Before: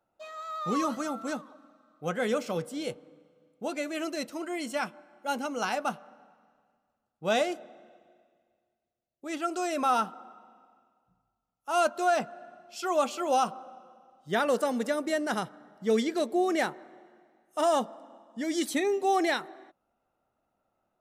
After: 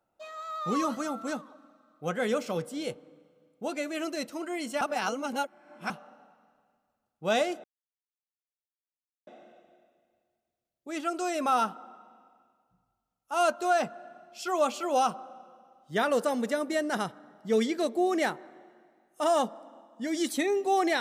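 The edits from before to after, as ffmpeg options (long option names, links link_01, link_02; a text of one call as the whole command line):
ffmpeg -i in.wav -filter_complex "[0:a]asplit=4[link_01][link_02][link_03][link_04];[link_01]atrim=end=4.812[link_05];[link_02]atrim=start=4.808:end=5.902,asetpts=PTS-STARTPTS,areverse[link_06];[link_03]atrim=start=5.898:end=7.64,asetpts=PTS-STARTPTS,afade=type=out:start_time=1.738:duration=0.004:curve=hsin,apad=pad_dur=1.63[link_07];[link_04]atrim=start=7.64,asetpts=PTS-STARTPTS,afade=type=in:duration=0.004:curve=hsin[link_08];[link_05][link_06]acrossfade=duration=0.004:curve1=hsin:curve2=hsin[link_09];[link_07][link_08]concat=n=2:v=0:a=1[link_10];[link_09][link_10]acrossfade=duration=0.004:curve1=hsin:curve2=hsin" out.wav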